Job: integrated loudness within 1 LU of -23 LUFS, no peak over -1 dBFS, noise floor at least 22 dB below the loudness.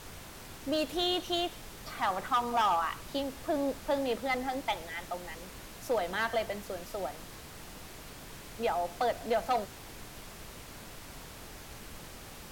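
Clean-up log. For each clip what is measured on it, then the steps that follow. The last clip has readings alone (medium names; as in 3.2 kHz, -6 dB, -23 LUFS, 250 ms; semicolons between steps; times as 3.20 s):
clipped samples 0.5%; clipping level -22.5 dBFS; noise floor -48 dBFS; noise floor target -55 dBFS; loudness -32.5 LUFS; peak level -22.5 dBFS; loudness target -23.0 LUFS
-> clip repair -22.5 dBFS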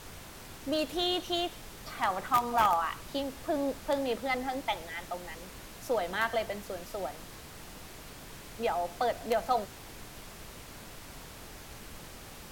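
clipped samples 0.0%; noise floor -48 dBFS; noise floor target -54 dBFS
-> noise print and reduce 6 dB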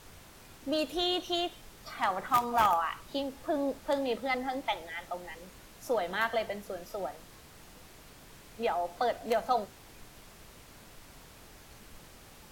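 noise floor -54 dBFS; loudness -32.0 LUFS; peak level -13.5 dBFS; loudness target -23.0 LUFS
-> trim +9 dB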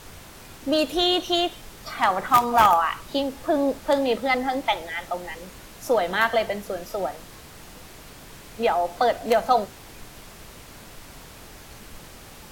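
loudness -23.0 LUFS; peak level -4.5 dBFS; noise floor -45 dBFS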